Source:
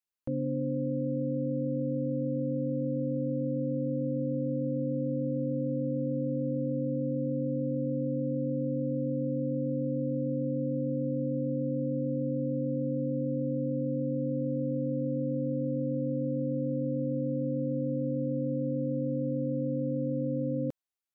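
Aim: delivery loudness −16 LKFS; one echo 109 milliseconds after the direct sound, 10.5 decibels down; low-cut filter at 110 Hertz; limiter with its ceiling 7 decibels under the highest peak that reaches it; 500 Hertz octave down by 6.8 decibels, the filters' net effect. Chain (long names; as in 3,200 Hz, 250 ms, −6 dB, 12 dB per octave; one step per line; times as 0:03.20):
high-pass filter 110 Hz
parametric band 500 Hz −7 dB
brickwall limiter −31.5 dBFS
single-tap delay 109 ms −10.5 dB
level +21 dB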